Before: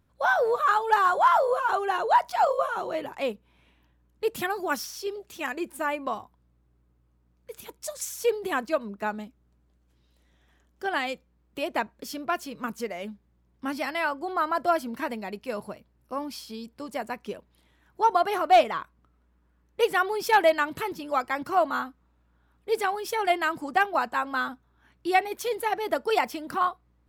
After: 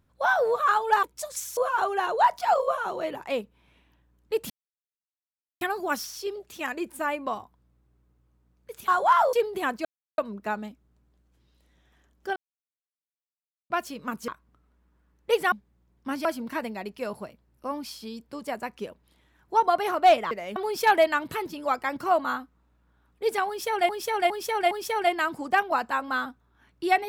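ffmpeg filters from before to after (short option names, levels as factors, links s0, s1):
-filter_complex "[0:a]asplit=17[s0][s1][s2][s3][s4][s5][s6][s7][s8][s9][s10][s11][s12][s13][s14][s15][s16];[s0]atrim=end=1.032[s17];[s1]atrim=start=7.678:end=8.222[s18];[s2]atrim=start=1.478:end=4.41,asetpts=PTS-STARTPTS,afade=t=out:st=2.928:d=0.004:c=hsin,apad=pad_dur=1.11[s19];[s3]atrim=start=4.41:end=7.682,asetpts=PTS-STARTPTS,afade=t=in:d=0.004:c=hsin[s20];[s4]atrim=start=1.028:end=1.482[s21];[s5]atrim=start=8.218:end=8.74,asetpts=PTS-STARTPTS,afade=t=out:st=0.518:d=0.004:c=hsin,apad=pad_dur=0.33[s22];[s6]atrim=start=8.74:end=10.92,asetpts=PTS-STARTPTS,afade=t=in:d=0.004:c=hsin,afade=t=out:st=2.176:d=0.004:c=hsin[s23];[s7]atrim=start=10.92:end=12.26,asetpts=PTS-STARTPTS,volume=0[s24];[s8]atrim=start=12.26:end=12.842,asetpts=PTS-STARTPTS,afade=t=in:d=0.004:c=hsin[s25];[s9]atrim=start=18.778:end=20.022[s26];[s10]atrim=start=13.088:end=13.822[s27];[s11]atrim=start=14.718:end=18.782[s28];[s12]atrim=start=12.838:end=13.092[s29];[s13]atrim=start=20.018:end=23.352[s30];[s14]atrim=start=22.938:end=23.352[s31];[s15]atrim=start=22.938:end=23.352[s32];[s16]atrim=start=22.938[s33];[s17][s18]acrossfade=d=0.004:c1=hsin:c2=hsin[s34];[s19][s20]concat=n=2:v=0:a=1[s35];[s34][s35]acrossfade=d=0.004:c1=hsin:c2=hsin[s36];[s36][s21]acrossfade=d=0.004:c1=hsin:c2=hsin[s37];[s22][s23][s24][s25]concat=n=4:v=0:a=1[s38];[s37][s38]acrossfade=d=0.004:c1=hsin:c2=hsin[s39];[s39][s26]acrossfade=d=0.004:c1=hsin:c2=hsin[s40];[s40][s27]acrossfade=d=0.004:c1=hsin:c2=hsin[s41];[s41][s28]acrossfade=d=0.004:c1=hsin:c2=hsin[s42];[s42][s29]acrossfade=d=0.004:c1=hsin:c2=hsin[s43];[s43][s30]acrossfade=d=0.004:c1=hsin:c2=hsin[s44];[s44][s31]acrossfade=d=0.004:c1=hsin:c2=hsin[s45];[s45][s32]acrossfade=d=0.004:c1=hsin:c2=hsin[s46];[s46][s33]acrossfade=d=0.004:c1=hsin:c2=hsin"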